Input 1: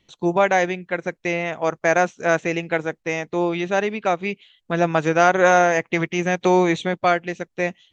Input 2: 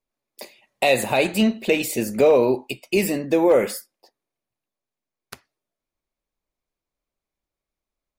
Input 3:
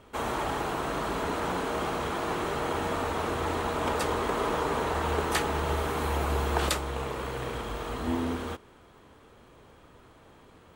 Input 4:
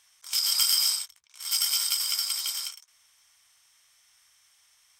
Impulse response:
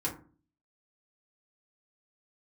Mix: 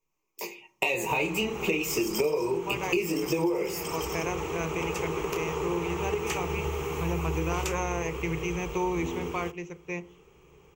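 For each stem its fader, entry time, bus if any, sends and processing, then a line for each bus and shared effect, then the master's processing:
−15.5 dB, 2.30 s, send −13 dB, no processing
+2.0 dB, 0.00 s, send −9.5 dB, micro pitch shift up and down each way 10 cents
−4.0 dB, 0.95 s, no send, parametric band 1,000 Hz −11 dB 0.32 octaves
−8.0 dB, 1.55 s, no send, reverb reduction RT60 1.8 s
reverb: on, RT60 0.40 s, pre-delay 3 ms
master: EQ curve with evenly spaced ripples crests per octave 0.75, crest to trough 14 dB; downward compressor 10 to 1, threshold −24 dBFS, peak gain reduction 18.5 dB

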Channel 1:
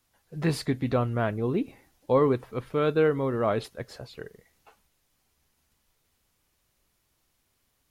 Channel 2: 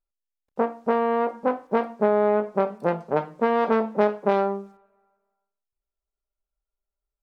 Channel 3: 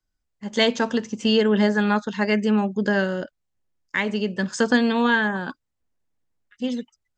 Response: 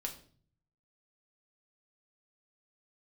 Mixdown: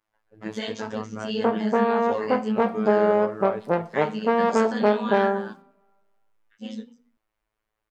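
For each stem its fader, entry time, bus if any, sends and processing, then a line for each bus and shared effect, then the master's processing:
−1.5 dB, 0.00 s, bus A, no send, three-way crossover with the lows and the highs turned down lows −12 dB, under 340 Hz, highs −19 dB, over 2,500 Hz
+0.5 dB, 0.85 s, no bus, no send, no processing
−2.5 dB, 0.00 s, bus A, send −11 dB, micro pitch shift up and down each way 52 cents
bus A: 0.0 dB, phases set to zero 108 Hz; brickwall limiter −16 dBFS, peak gain reduction 8.5 dB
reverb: on, RT60 0.45 s, pre-delay 5 ms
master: no processing

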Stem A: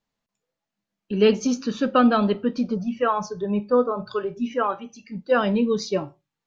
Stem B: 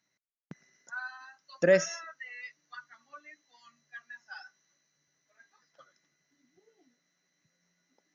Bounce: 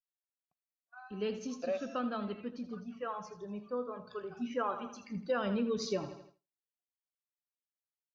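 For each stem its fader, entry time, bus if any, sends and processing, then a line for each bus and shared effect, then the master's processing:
0:04.08 −17 dB → 0:04.67 −5.5 dB, 0.00 s, no send, echo send −12.5 dB, low-shelf EQ 140 Hz −8 dB
+1.5 dB, 0.00 s, no send, no echo send, formant filter a; low-shelf EQ 220 Hz −9 dB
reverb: not used
echo: repeating echo 81 ms, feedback 47%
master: parametric band 78 Hz +14 dB 1 octave; downward expander −53 dBFS; downward compressor 4 to 1, threshold −30 dBFS, peak gain reduction 9 dB

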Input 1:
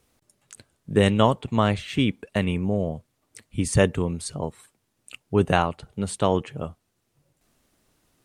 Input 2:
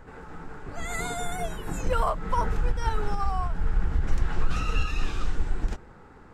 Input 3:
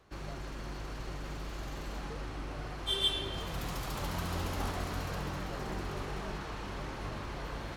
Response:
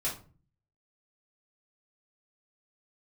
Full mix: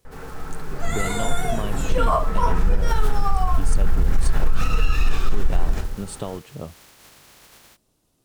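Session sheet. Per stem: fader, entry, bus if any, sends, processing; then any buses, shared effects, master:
−0.5 dB, 0.00 s, no send, parametric band 1,800 Hz −8.5 dB 1.2 octaves; downward compressor, threshold −26 dBFS, peak gain reduction 12.5 dB
+1.0 dB, 0.05 s, send −3 dB, no processing
−10.5 dB, 0.00 s, no send, compressing power law on the bin magnitudes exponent 0.22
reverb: on, RT60 0.40 s, pre-delay 4 ms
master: brickwall limiter −8.5 dBFS, peak gain reduction 9 dB

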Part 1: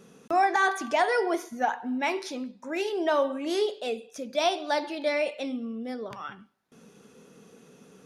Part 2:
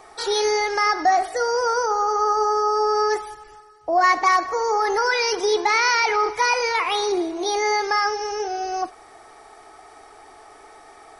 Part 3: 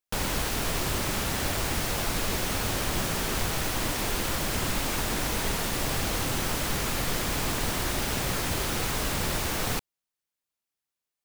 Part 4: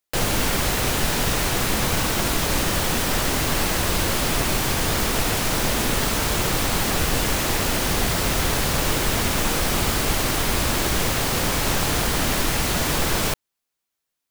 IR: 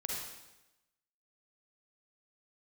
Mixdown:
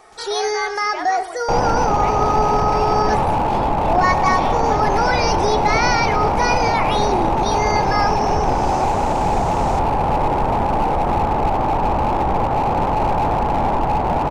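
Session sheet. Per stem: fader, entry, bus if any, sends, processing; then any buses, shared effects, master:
−1.0 dB, 0.00 s, no send, high-pass filter 950 Hz 12 dB per octave; spectral tilt −3 dB per octave
−1.0 dB, 0.00 s, no send, no processing
−10.0 dB, 0.00 s, no send, low-pass with resonance 6,900 Hz, resonance Q 2.1; automatic ducking −23 dB, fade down 0.25 s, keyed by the first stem
+2.0 dB, 1.35 s, no send, low-pass with resonance 850 Hz, resonance Q 7.7; slew-rate limiting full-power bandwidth 98 Hz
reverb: not used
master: no processing

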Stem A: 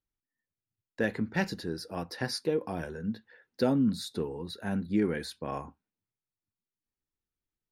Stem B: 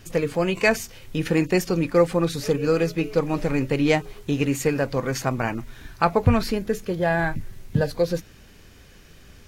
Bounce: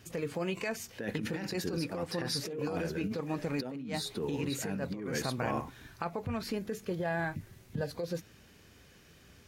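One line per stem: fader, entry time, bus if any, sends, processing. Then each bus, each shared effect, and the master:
−1.5 dB, 0.00 s, no send, no processing
−9.5 dB, 0.00 s, no send, downward compressor 6 to 1, threshold −21 dBFS, peak gain reduction 10 dB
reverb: not used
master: high-pass filter 72 Hz; compressor whose output falls as the input rises −34 dBFS, ratio −1

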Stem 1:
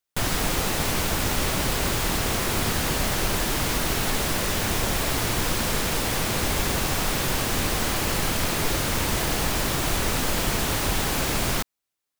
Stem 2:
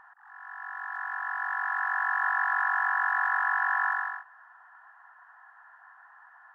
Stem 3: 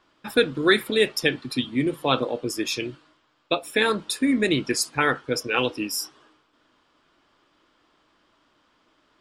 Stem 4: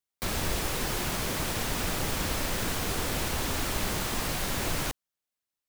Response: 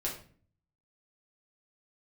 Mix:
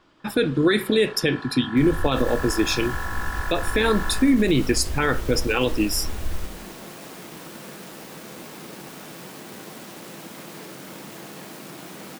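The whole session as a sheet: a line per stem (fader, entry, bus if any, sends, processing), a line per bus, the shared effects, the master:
−18.0 dB, 1.95 s, send −5 dB, phase distortion by the signal itself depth 0.32 ms; high-pass filter 170 Hz 24 dB per octave
−6.5 dB, 0.20 s, no send, no processing
+2.0 dB, 0.00 s, send −20.5 dB, no processing
−16.0 dB, 1.55 s, send −10 dB, low shelf with overshoot 100 Hz +12 dB, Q 1.5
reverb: on, RT60 0.45 s, pre-delay 5 ms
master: low-shelf EQ 370 Hz +7 dB; brickwall limiter −10 dBFS, peak gain reduction 10 dB

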